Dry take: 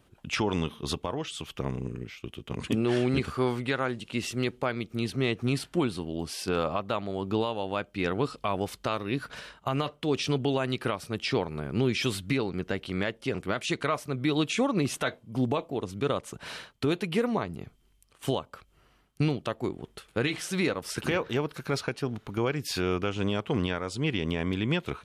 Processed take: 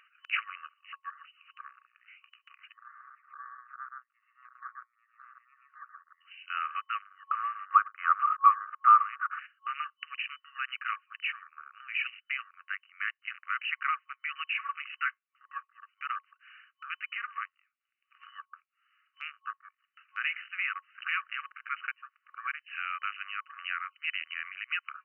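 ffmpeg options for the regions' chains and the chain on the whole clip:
ffmpeg -i in.wav -filter_complex "[0:a]asettb=1/sr,asplit=3[link_01][link_02][link_03];[link_01]atrim=end=2.724[link_04];[link_02]atrim=start=2.72:end=6.21,asetpts=PTS-STARTPTS,afade=type=in:duration=0.004:curve=qsin,afade=type=out:start_time=3.486:duration=0.004:curve=qsin,aeval=exprs='if(lt(val(0),0),0.447*val(0),val(0))':channel_layout=same,lowpass=frequency=1100:width=0.5412,lowpass=frequency=1100:width=1.3066,aecho=1:1:125:0.631,atrim=end_sample=153909[link_05];[link_03]atrim=start=6.206[link_06];[link_04][link_05]acrossfade=duration=0.004:curve1=hsin:curve2=qsin[link_07];[link_07][link_06]acrossfade=duration=0.004:curve1=qsin:curve2=hsin,asettb=1/sr,asplit=3[link_08][link_09][link_10];[link_08]atrim=end=7.294[link_11];[link_09]atrim=start=7.29:end=9.39,asetpts=PTS-STARTPTS,afade=type=in:duration=0.004:curve=qsin,afade=type=out:start_time=2.096:duration=0.004:curve=qsin,volume=19.5dB,asoftclip=hard,volume=-19.5dB,lowpass=frequency=1200:width_type=q:width=7.2,aecho=1:1:105:0.0708,atrim=end_sample=92610[link_12];[link_10]atrim=start=9.386[link_13];[link_11][link_12]acrossfade=duration=0.004:curve1=hsin:curve2=qsin[link_14];[link_14][link_13]acrossfade=duration=0.004:curve1=qsin:curve2=hsin,afwtdn=0.0112,afftfilt=real='re*between(b*sr/4096,1100,3000)':imag='im*between(b*sr/4096,1100,3000)':win_size=4096:overlap=0.75,acompressor=mode=upward:threshold=-49dB:ratio=2.5,volume=2.5dB" out.wav

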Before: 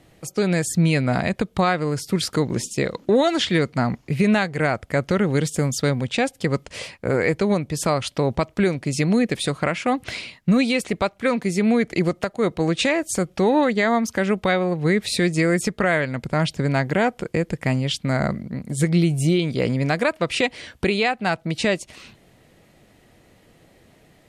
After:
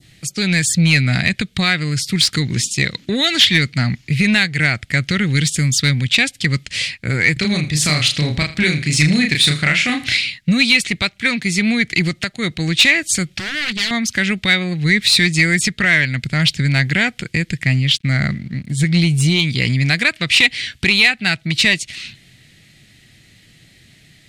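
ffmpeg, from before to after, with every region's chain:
ffmpeg -i in.wav -filter_complex "[0:a]asettb=1/sr,asplit=3[link_01][link_02][link_03];[link_01]atrim=end=7.334[link_04];[link_02]atrim=start=7.33:end=10.17,asetpts=PTS-STARTPTS,afade=type=in:duration=0.004:curve=qsin,afade=type=out:start_time=2.836:duration=0.004:curve=qsin,asplit=2[link_05][link_06];[link_06]adelay=33,volume=-4dB[link_07];[link_05][link_07]amix=inputs=2:normalize=0,atrim=end_sample=125244,aecho=1:1:80|160|240:0.15|0.0509|0.0173,atrim=end_sample=125244[link_08];[link_03]atrim=start=10.166[link_09];[link_04][link_08]acrossfade=duration=0.004:curve1=hsin:curve2=qsin[link_10];[link_10][link_09]acrossfade=duration=0.004:curve1=qsin:curve2=hsin,asettb=1/sr,asplit=3[link_11][link_12][link_13];[link_11]atrim=end=13.324[link_14];[link_12]atrim=start=13.32:end=13.91,asetpts=PTS-STARTPTS,afade=type=in:duration=0.004:curve=qsin,afade=type=out:start_time=0.586:duration=0.004:curve=qsin,aeval=exprs='0.112*(abs(mod(val(0)/0.112+3,4)-2)-1)':channel_layout=same,acompressor=threshold=-26dB:ratio=4:attack=3.2:release=140:knee=1:detection=peak[link_15];[link_13]atrim=start=13.906[link_16];[link_14][link_15]acrossfade=duration=0.004:curve1=hsin:curve2=qsin[link_17];[link_17][link_16]acrossfade=duration=0.004:curve1=qsin:curve2=hsin,asettb=1/sr,asplit=3[link_18][link_19][link_20];[link_18]atrim=end=17.634[link_21];[link_19]atrim=start=17.63:end=18.94,asetpts=PTS-STARTPTS,afade=type=in:duration=0.004:curve=qsin,afade=type=out:start_time=1.306:duration=0.004:curve=qsin,highshelf=frequency=4400:gain=-7.5,aeval=exprs='sgn(val(0))*max(abs(val(0))-0.002,0)':channel_layout=same[link_22];[link_20]atrim=start=18.936[link_23];[link_21][link_22]acrossfade=duration=0.004:curve1=hsin:curve2=qsin[link_24];[link_24][link_23]acrossfade=duration=0.004:curve1=qsin:curve2=hsin,equalizer=frequency=125:width_type=o:width=1:gain=7,equalizer=frequency=500:width_type=o:width=1:gain=-10,equalizer=frequency=1000:width_type=o:width=1:gain=-11,equalizer=frequency=2000:width_type=o:width=1:gain=8,equalizer=frequency=4000:width_type=o:width=1:gain=10,equalizer=frequency=8000:width_type=o:width=1:gain=6,acontrast=56,adynamicequalizer=threshold=0.0794:dfrequency=2300:dqfactor=0.84:tfrequency=2300:tqfactor=0.84:attack=5:release=100:ratio=0.375:range=2:mode=boostabove:tftype=bell,volume=-4dB" out.wav

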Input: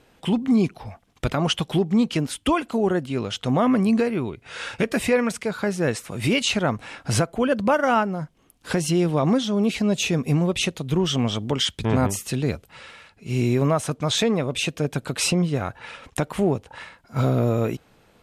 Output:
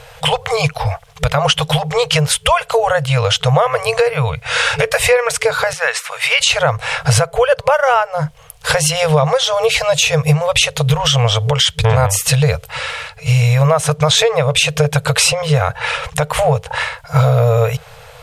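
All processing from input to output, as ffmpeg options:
ffmpeg -i in.wav -filter_complex "[0:a]asettb=1/sr,asplit=3[link_01][link_02][link_03];[link_01]atrim=end=5.734[link_04];[link_02]atrim=start=5.73:end=6.41,asetpts=PTS-STARTPTS,afade=type=in:duration=0.004:curve=qsin,afade=type=out:start_time=0.676:duration=0.004:curve=qsin,highpass=1200,highshelf=frequency=4500:gain=-11.5[link_05];[link_03]atrim=start=6.406[link_06];[link_04][link_05]acrossfade=duration=0.004:curve1=hsin:curve2=qsin[link_07];[link_07][link_06]acrossfade=duration=0.004:curve1=qsin:curve2=hsin,afftfilt=real='re*(1-between(b*sr/4096,160,440))':imag='im*(1-between(b*sr/4096,160,440))':win_size=4096:overlap=0.75,acompressor=threshold=-31dB:ratio=4,alimiter=level_in=21dB:limit=-1dB:release=50:level=0:latency=1,volume=-1dB" out.wav

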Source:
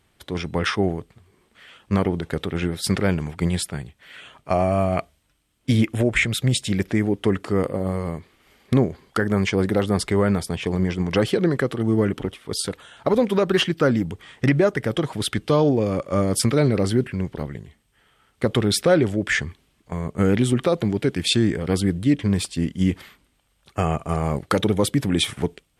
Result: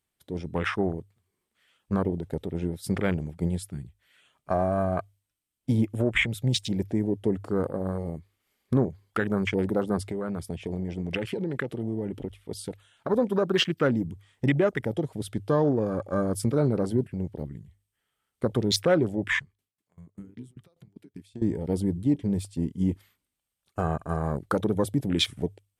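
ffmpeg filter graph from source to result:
ffmpeg -i in.wav -filter_complex "[0:a]asettb=1/sr,asplit=3[link_01][link_02][link_03];[link_01]atrim=end=10.004[link_04];[link_02]atrim=start=10:end=13.09,asetpts=PTS-STARTPTS,afade=type=in:duration=0.004:curve=qsin,afade=type=out:start_time=3.086:duration=0.004:curve=qsin,acompressor=threshold=-21dB:ratio=5:attack=3.2:release=140:knee=1:detection=peak,equalizer=frequency=2500:width_type=o:width=1.2:gain=5.5[link_05];[link_03]atrim=start=13.086[link_06];[link_04][link_05]acrossfade=duration=0.004:curve1=hsin:curve2=qsin[link_07];[link_07][link_06]acrossfade=duration=0.004:curve1=qsin:curve2=hsin,asettb=1/sr,asplit=3[link_08][link_09][link_10];[link_08]atrim=end=19.394[link_11];[link_09]atrim=start=19.39:end=21.42,asetpts=PTS-STARTPTS,afade=type=in:duration=0.004:curve=qsin,afade=type=out:start_time=2.026:duration=0.004:curve=qsin,highpass=96,acompressor=threshold=-32dB:ratio=2.5:attack=3.2:release=140:knee=1:detection=peak,aeval=exprs='val(0)*pow(10,-20*if(lt(mod(5.1*n/s,1),2*abs(5.1)/1000),1-mod(5.1*n/s,1)/(2*abs(5.1)/1000),(mod(5.1*n/s,1)-2*abs(5.1)/1000)/(1-2*abs(5.1)/1000))/20)':channel_layout=same[link_12];[link_10]atrim=start=21.416[link_13];[link_11][link_12]acrossfade=duration=0.004:curve1=hsin:curve2=qsin[link_14];[link_14][link_13]acrossfade=duration=0.004:curve1=qsin:curve2=hsin,afwtdn=0.0447,aemphasis=mode=production:type=50kf,bandreject=frequency=50:width_type=h:width=6,bandreject=frequency=100:width_type=h:width=6,volume=-5dB" out.wav

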